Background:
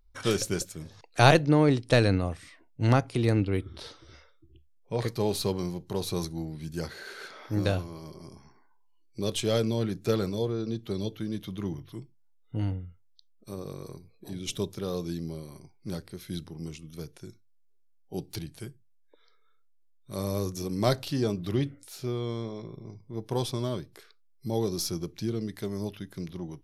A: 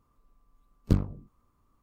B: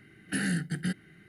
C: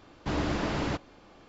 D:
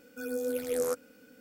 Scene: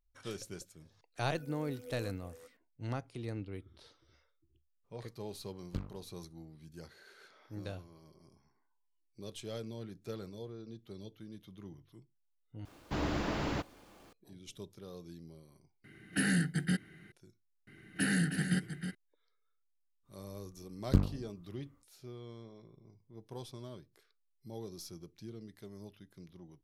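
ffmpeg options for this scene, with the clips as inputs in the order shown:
ffmpeg -i bed.wav -i cue0.wav -i cue1.wav -i cue2.wav -i cue3.wav -filter_complex "[1:a]asplit=2[link_01][link_02];[2:a]asplit=2[link_03][link_04];[0:a]volume=-16dB[link_05];[4:a]aecho=1:1:362:0.398[link_06];[link_01]equalizer=frequency=2800:width_type=o:width=2.7:gain=8.5[link_07];[3:a]acrusher=bits=9:mix=0:aa=0.000001[link_08];[link_04]aecho=1:1:315:0.398[link_09];[link_05]asplit=3[link_10][link_11][link_12];[link_10]atrim=end=12.654[link_13];[link_08]atrim=end=1.48,asetpts=PTS-STARTPTS,volume=-4.5dB[link_14];[link_11]atrim=start=14.126:end=15.844[link_15];[link_03]atrim=end=1.28,asetpts=PTS-STARTPTS,volume=-0.5dB[link_16];[link_12]atrim=start=17.116[link_17];[link_06]atrim=end=1.4,asetpts=PTS-STARTPTS,volume=-18dB,afade=type=in:duration=0.004:curve=hsin,afade=type=out:start_time=1.396:duration=0.004:curve=hsin,adelay=1170[link_18];[link_07]atrim=end=1.82,asetpts=PTS-STARTPTS,volume=-16dB,afade=type=in:duration=0.004:curve=hsin,afade=type=out:start_time=1.816:duration=0.004:curve=hsin,adelay=4840[link_19];[link_09]atrim=end=1.28,asetpts=PTS-STARTPTS,volume=-1dB,afade=type=in:duration=0.004:curve=hsin,afade=type=out:start_time=1.276:duration=0.004:curve=hsin,adelay=17670[link_20];[link_02]atrim=end=1.82,asetpts=PTS-STARTPTS,volume=-3dB,afade=type=in:duration=0.05,afade=type=out:start_time=1.77:duration=0.05,adelay=20030[link_21];[link_13][link_14]acrossfade=duration=0.004:curve1=hsin:curve2=hsin[link_22];[link_22][link_15]acrossfade=duration=0.004:curve1=hsin:curve2=hsin[link_23];[link_23][link_16]acrossfade=duration=0.004:curve1=hsin:curve2=hsin[link_24];[link_24][link_17]acrossfade=duration=0.004:curve1=hsin:curve2=hsin[link_25];[link_25][link_18][link_19][link_20][link_21]amix=inputs=5:normalize=0" out.wav

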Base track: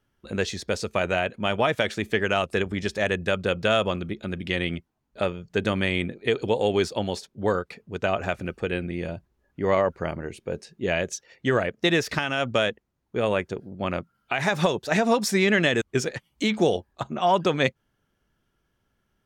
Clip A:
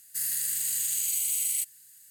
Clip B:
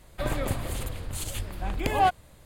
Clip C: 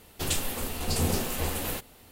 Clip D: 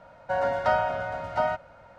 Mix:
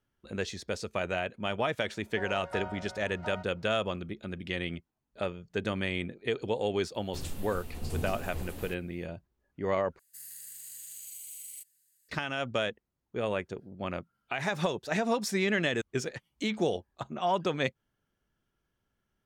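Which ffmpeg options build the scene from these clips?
ffmpeg -i bed.wav -i cue0.wav -i cue1.wav -i cue2.wav -i cue3.wav -filter_complex "[0:a]volume=-7.5dB[link_01];[3:a]lowshelf=frequency=350:gain=11.5[link_02];[link_01]asplit=2[link_03][link_04];[link_03]atrim=end=9.994[link_05];[1:a]atrim=end=2.1,asetpts=PTS-STARTPTS,volume=-16.5dB[link_06];[link_04]atrim=start=12.086[link_07];[4:a]atrim=end=1.98,asetpts=PTS-STARTPTS,volume=-15.5dB,afade=type=in:duration=0.004:curve=hsin,afade=type=out:start_time=1.976:duration=0.004:curve=hsin,adelay=1870[link_08];[link_02]atrim=end=2.11,asetpts=PTS-STARTPTS,volume=-16dB,afade=type=in:duration=0.004:curve=hsin,afade=type=out:start_time=2.106:duration=0.004:curve=hsin,adelay=6940[link_09];[link_05][link_06]acrossfade=duration=0.004:curve1=hsin:curve2=hsin[link_10];[link_10][link_07]acrossfade=duration=0.004:curve1=hsin:curve2=hsin[link_11];[link_11][link_08][link_09]amix=inputs=3:normalize=0" out.wav

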